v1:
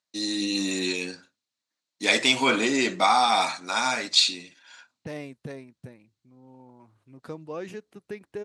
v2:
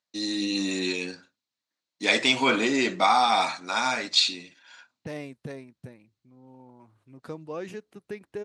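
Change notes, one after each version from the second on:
first voice: add air absorption 52 m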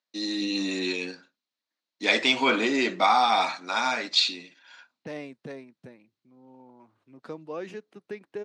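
master: add three-band isolator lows -18 dB, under 160 Hz, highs -14 dB, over 6400 Hz

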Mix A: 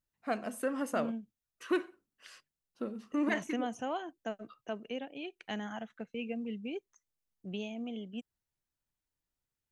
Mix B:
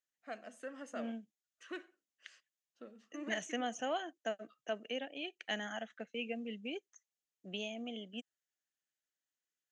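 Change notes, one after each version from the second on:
first voice -11.5 dB; master: add speaker cabinet 280–8200 Hz, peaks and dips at 390 Hz -4 dB, 630 Hz +3 dB, 970 Hz -8 dB, 1800 Hz +6 dB, 3100 Hz +5 dB, 6700 Hz +7 dB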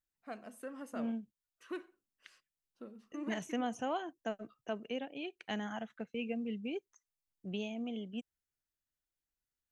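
master: remove speaker cabinet 280–8200 Hz, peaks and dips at 390 Hz -4 dB, 630 Hz +3 dB, 970 Hz -8 dB, 1800 Hz +6 dB, 3100 Hz +5 dB, 6700 Hz +7 dB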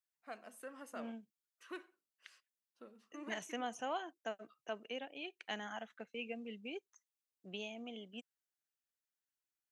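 master: add HPF 690 Hz 6 dB/oct

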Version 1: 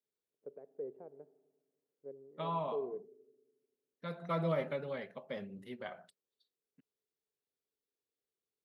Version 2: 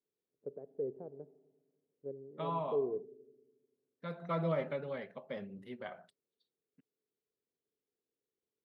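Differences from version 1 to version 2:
first voice: add tilt -4 dB/oct; master: add LPF 3400 Hz 6 dB/oct

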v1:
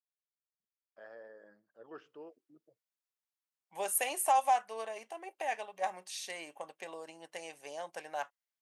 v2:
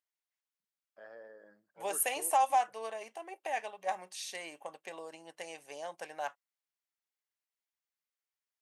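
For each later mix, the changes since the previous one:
second voice: entry -1.95 s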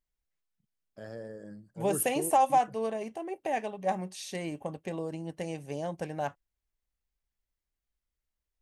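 first voice: remove LPF 1900 Hz 12 dB/oct; master: remove HPF 820 Hz 12 dB/oct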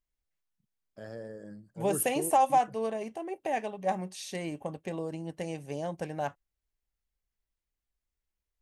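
none

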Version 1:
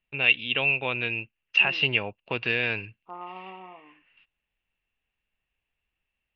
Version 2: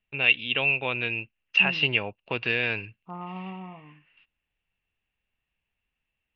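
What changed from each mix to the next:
second voice: remove HPF 290 Hz 24 dB/oct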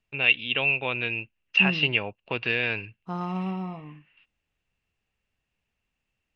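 second voice: remove ladder low-pass 1300 Hz, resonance 40%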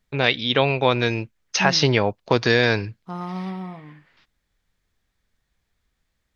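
first voice: remove ladder low-pass 2800 Hz, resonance 90%; second voice: remove air absorption 51 m

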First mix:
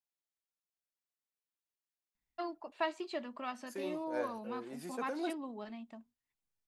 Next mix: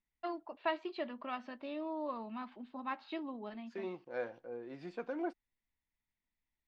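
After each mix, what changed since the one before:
first voice: entry -2.15 s; master: add LPF 4000 Hz 24 dB/oct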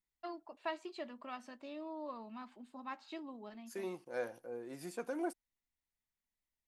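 first voice -5.0 dB; master: remove LPF 4000 Hz 24 dB/oct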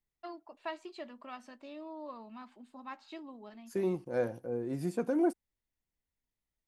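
second voice: remove HPF 1100 Hz 6 dB/oct

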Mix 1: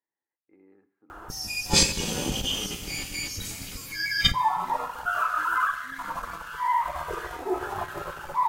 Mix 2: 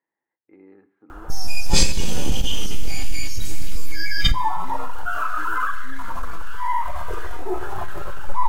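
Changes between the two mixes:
speech +9.0 dB; background: remove HPF 160 Hz 6 dB/oct

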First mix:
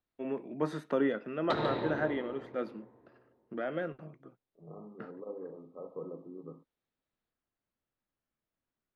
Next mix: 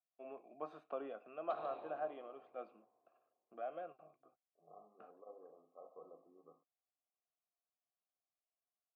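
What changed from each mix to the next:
background -4.5 dB; master: add vowel filter a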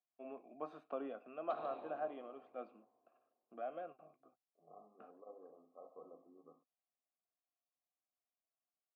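master: add bell 250 Hz +7.5 dB 0.43 oct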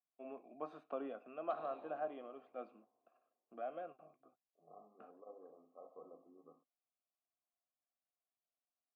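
background -4.5 dB

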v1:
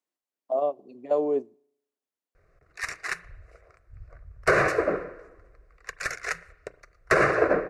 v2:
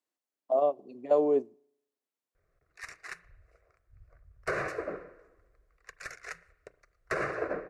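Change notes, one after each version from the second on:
background -11.5 dB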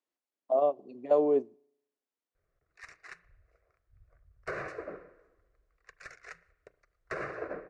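background -5.0 dB; master: add air absorption 58 m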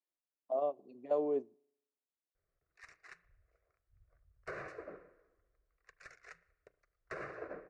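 speech -8.0 dB; background -7.0 dB

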